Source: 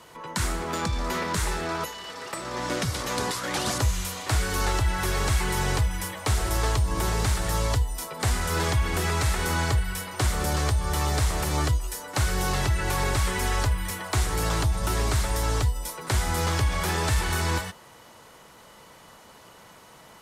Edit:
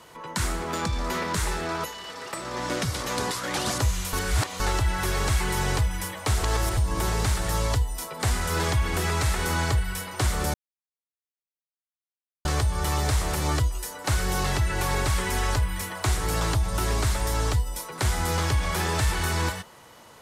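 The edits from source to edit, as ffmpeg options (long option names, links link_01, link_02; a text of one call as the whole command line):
ffmpeg -i in.wav -filter_complex "[0:a]asplit=6[link_01][link_02][link_03][link_04][link_05][link_06];[link_01]atrim=end=4.132[link_07];[link_02]atrim=start=4.128:end=4.602,asetpts=PTS-STARTPTS,areverse[link_08];[link_03]atrim=start=4.598:end=6.432[link_09];[link_04]atrim=start=6.428:end=6.772,asetpts=PTS-STARTPTS,areverse[link_10];[link_05]atrim=start=6.768:end=10.54,asetpts=PTS-STARTPTS,afade=type=out:start_time=3.768:duration=0.004:curve=hsin,apad=pad_dur=1.91[link_11];[link_06]atrim=start=10.54,asetpts=PTS-STARTPTS,afade=type=in:duration=0.004:curve=hsin[link_12];[link_07][link_08]acrossfade=duration=0.004:curve1=hsin:curve2=hsin[link_13];[link_13][link_09]acrossfade=duration=0.004:curve1=hsin:curve2=hsin[link_14];[link_14][link_10]acrossfade=duration=0.004:curve1=hsin:curve2=hsin[link_15];[link_11][link_12]concat=n=2:v=0:a=1[link_16];[link_15][link_16]acrossfade=duration=0.004:curve1=hsin:curve2=hsin" out.wav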